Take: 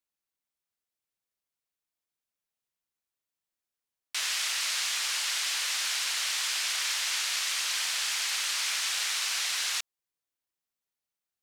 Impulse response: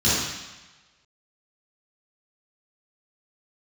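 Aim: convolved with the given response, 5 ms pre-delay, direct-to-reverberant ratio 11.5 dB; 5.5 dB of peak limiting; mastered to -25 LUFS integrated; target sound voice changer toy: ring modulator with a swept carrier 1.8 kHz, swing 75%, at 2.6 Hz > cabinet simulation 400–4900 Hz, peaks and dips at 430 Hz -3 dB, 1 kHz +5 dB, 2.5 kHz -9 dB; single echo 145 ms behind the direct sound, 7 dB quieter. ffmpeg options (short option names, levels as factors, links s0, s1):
-filter_complex "[0:a]alimiter=limit=0.075:level=0:latency=1,aecho=1:1:145:0.447,asplit=2[s0][s1];[1:a]atrim=start_sample=2205,adelay=5[s2];[s1][s2]afir=irnorm=-1:irlink=0,volume=0.0376[s3];[s0][s3]amix=inputs=2:normalize=0,aeval=exprs='val(0)*sin(2*PI*1800*n/s+1800*0.75/2.6*sin(2*PI*2.6*n/s))':c=same,highpass=400,equalizer=f=430:t=q:w=4:g=-3,equalizer=f=1000:t=q:w=4:g=5,equalizer=f=2500:t=q:w=4:g=-9,lowpass=f=4900:w=0.5412,lowpass=f=4900:w=1.3066,volume=3.55"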